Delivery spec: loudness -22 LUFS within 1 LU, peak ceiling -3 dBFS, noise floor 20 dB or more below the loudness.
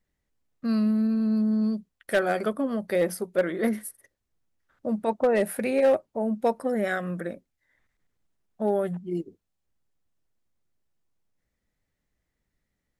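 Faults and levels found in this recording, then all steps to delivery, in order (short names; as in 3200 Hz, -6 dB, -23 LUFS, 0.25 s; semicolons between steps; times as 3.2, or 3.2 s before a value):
clipped 0.3%; flat tops at -15.5 dBFS; loudness -26.5 LUFS; peak -15.5 dBFS; loudness target -22.0 LUFS
-> clip repair -15.5 dBFS; gain +4.5 dB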